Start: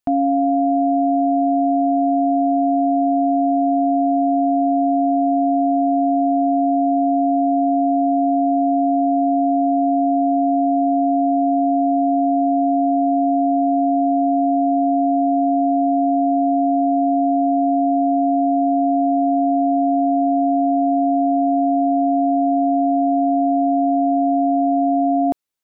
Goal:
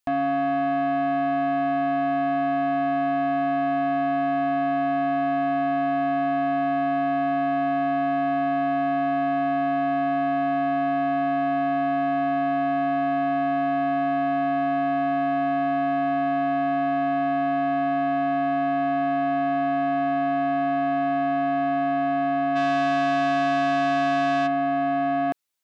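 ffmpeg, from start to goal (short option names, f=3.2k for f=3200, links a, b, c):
-filter_complex "[0:a]tiltshelf=f=680:g=-3.5,asplit=3[a][b][c];[a]afade=t=out:st=22.55:d=0.02[d];[b]acontrast=65,afade=t=in:st=22.55:d=0.02,afade=t=out:st=24.46:d=0.02[e];[c]afade=t=in:st=24.46:d=0.02[f];[d][e][f]amix=inputs=3:normalize=0,asoftclip=type=tanh:threshold=-20.5dB"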